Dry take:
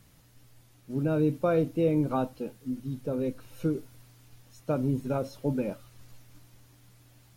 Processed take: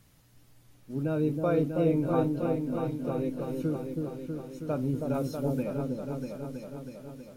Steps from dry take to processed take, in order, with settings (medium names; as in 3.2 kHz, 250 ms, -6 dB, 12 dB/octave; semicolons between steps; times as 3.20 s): 5.14–5.63 s: treble shelf 5.7 kHz +8.5 dB; delay with an opening low-pass 322 ms, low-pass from 750 Hz, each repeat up 2 oct, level -3 dB; trim -2.5 dB